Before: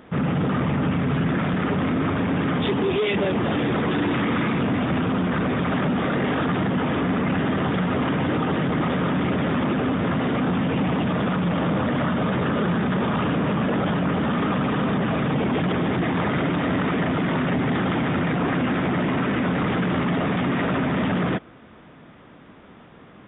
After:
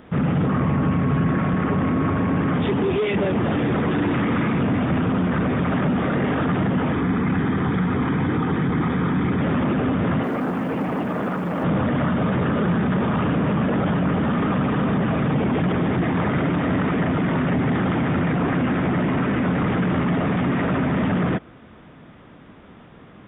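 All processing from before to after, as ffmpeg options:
ffmpeg -i in.wav -filter_complex "[0:a]asettb=1/sr,asplit=3[link_01][link_02][link_03];[link_01]atrim=end=0.464[link_04];[link_02]atrim=start=0.46:end=2.53,asetpts=PTS-STARTPTS,afade=type=in:duration=0.004:curve=qsin,afade=type=out:start_time=2.066:duration=0.004:curve=qsin,lowpass=2900,aeval=exprs='val(0)+0.02*sin(2*PI*1100*n/s)':channel_layout=same[link_05];[link_03]atrim=start=2.526[link_06];[link_04][link_05]acrossfade=duration=0.004:curve1=hsin:curve2=qsin[link_07];[link_07][link_06]acrossfade=duration=0.004:curve1=qsin:curve2=hsin,asettb=1/sr,asplit=3[link_08][link_09][link_10];[link_08]atrim=end=6.924[link_11];[link_09]atrim=start=6.92:end=9.41,asetpts=PTS-STARTPTS,afade=type=in:duration=0.004:curve=qsin,afade=type=out:start_time=2.486:duration=0.004:curve=qsin,equalizer=frequency=600:width_type=o:width=0.3:gain=-13,bandreject=frequency=2800:width=7.2[link_12];[link_10]atrim=start=9.406[link_13];[link_11][link_12]acrossfade=duration=0.004:curve1=hsin:curve2=qsin[link_14];[link_14][link_13]acrossfade=duration=0.004:curve1=qsin:curve2=hsin,asettb=1/sr,asplit=3[link_15][link_16][link_17];[link_15]atrim=end=10.234[link_18];[link_16]atrim=start=10.23:end=11.64,asetpts=PTS-STARTPTS,afade=type=in:duration=0.004:curve=qsin,afade=type=out:start_time=1.406:duration=0.004:curve=qsin,acrossover=split=210 2500:gain=0.224 1 0.251[link_19][link_20][link_21];[link_19][link_20][link_21]amix=inputs=3:normalize=0,acrusher=bits=6:mode=log:mix=0:aa=0.000001[link_22];[link_17]atrim=start=11.636[link_23];[link_18][link_22]acrossfade=duration=0.004:curve1=hsin:curve2=qsin[link_24];[link_24][link_23]acrossfade=duration=0.004:curve1=qsin:curve2=hsin,acrossover=split=3200[link_25][link_26];[link_26]acompressor=threshold=-56dB:ratio=4:attack=1:release=60[link_27];[link_25][link_27]amix=inputs=2:normalize=0,lowshelf=frequency=160:gain=5.5" out.wav

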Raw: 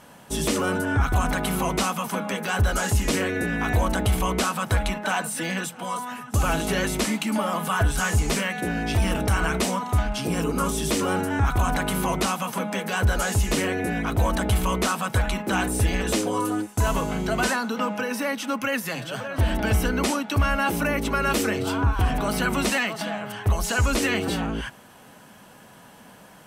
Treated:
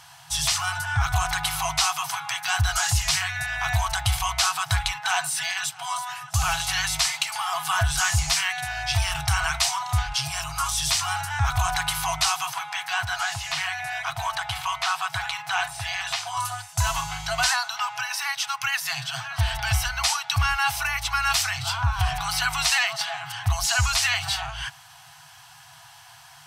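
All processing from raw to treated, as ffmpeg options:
ffmpeg -i in.wav -filter_complex "[0:a]asettb=1/sr,asplit=3[link_01][link_02][link_03];[link_01]atrim=end=12.534[link_04];[link_02]atrim=start=12.53:end=16.37,asetpts=PTS-STARTPTS,afade=type=in:duration=0.004:curve=qsin,afade=type=out:start_time=3.836:duration=0.004:curve=qsin,acrossover=split=3800[link_05][link_06];[link_06]acompressor=threshold=-43dB:ratio=4:attack=1:release=60[link_07];[link_05][link_07]amix=inputs=2:normalize=0,highpass=190[link_08];[link_03]atrim=start=16.366[link_09];[link_04][link_08]acrossfade=duration=0.004:curve1=hsin:curve2=qsin[link_10];[link_10][link_09]acrossfade=duration=0.004:curve1=qsin:curve2=hsin,highpass=63,afftfilt=real='re*(1-between(b*sr/4096,160,660))':imag='im*(1-between(b*sr/4096,160,660))':win_size=4096:overlap=0.75,equalizer=frequency=4800:width=0.98:gain=10" out.wav

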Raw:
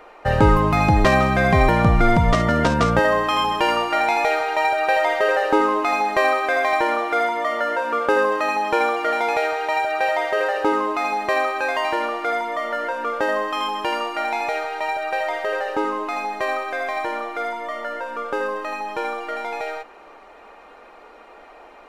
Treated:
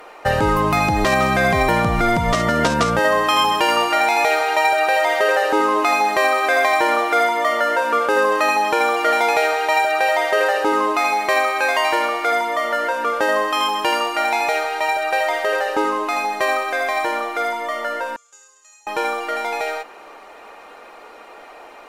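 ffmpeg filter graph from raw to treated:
ffmpeg -i in.wav -filter_complex "[0:a]asettb=1/sr,asplit=3[link_01][link_02][link_03];[link_01]atrim=end=10.994[link_04];[link_02]atrim=start=10.99:end=12.32,asetpts=PTS-STARTPTS,afade=type=in:duration=0.004:curve=qsin,afade=type=out:start_time=1.326:duration=0.004:curve=qsin,aeval=exprs='val(0)+0.01*sin(2*PI*2200*n/s)':channel_layout=same,equalizer=frequency=170:width_type=o:width=2:gain=-4[link_05];[link_03]atrim=start=12.316[link_06];[link_04][link_05]acrossfade=duration=0.004:curve1=hsin:curve2=qsin[link_07];[link_07][link_06]acrossfade=duration=0.004:curve1=qsin:curve2=hsin,asettb=1/sr,asplit=3[link_08][link_09][link_10];[link_08]atrim=end=18.164[link_11];[link_09]atrim=start=18.16:end=18.87,asetpts=PTS-STARTPTS,afade=type=in:duration=0.004:curve=qsin,afade=type=out:start_time=0.706:duration=0.004:curve=qsin,bandpass=frequency=6900:width_type=q:width=18,acontrast=77[link_12];[link_10]atrim=start=18.866[link_13];[link_11][link_12]acrossfade=duration=0.004:curve1=hsin:curve2=qsin[link_14];[link_14][link_13]acrossfade=duration=0.004:curve1=qsin:curve2=hsin,lowshelf=frequency=130:gain=-9.5,alimiter=limit=-12dB:level=0:latency=1:release=189,aemphasis=mode=production:type=cd,volume=4.5dB" out.wav

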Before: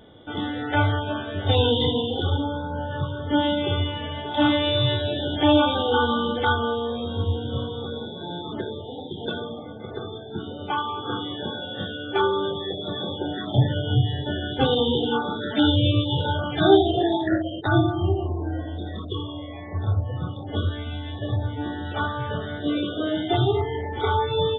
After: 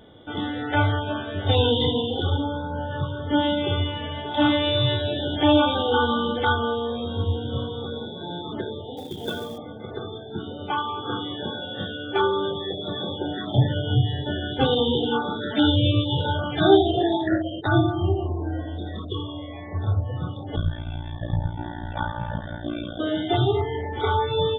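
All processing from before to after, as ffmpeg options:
ffmpeg -i in.wav -filter_complex "[0:a]asettb=1/sr,asplit=3[link_01][link_02][link_03];[link_01]atrim=end=8.974[link_04];[link_02]atrim=start=8.97:end=9.58,asetpts=PTS-STARTPTS,afade=type=in:duration=0.004:curve=qsin,afade=type=out:start_time=0.606:duration=0.004:curve=qsin,asubboost=boost=8.5:cutoff=72,acrusher=bits=4:mode=log:mix=0:aa=0.000001[link_05];[link_03]atrim=start=9.576[link_06];[link_04][link_05]acrossfade=duration=0.004:curve1=hsin:curve2=qsin[link_07];[link_07][link_06]acrossfade=duration=0.004:curve1=qsin:curve2=hsin,asettb=1/sr,asplit=3[link_08][link_09][link_10];[link_08]atrim=end=20.564[link_11];[link_09]atrim=start=20.56:end=23,asetpts=PTS-STARTPTS,afade=type=in:duration=0.004:curve=qsin,afade=type=out:start_time=2.436:duration=0.004:curve=qsin,aemphasis=mode=reproduction:type=75kf,aecho=1:1:1.2:0.86,atrim=end_sample=107604,tremolo=f=58:d=0.947[link_12];[link_10]atrim=start=22.996[link_13];[link_11][link_12]acrossfade=duration=0.004:curve1=hsin:curve2=qsin[link_14];[link_14][link_13]acrossfade=duration=0.004:curve1=qsin:curve2=hsin" out.wav

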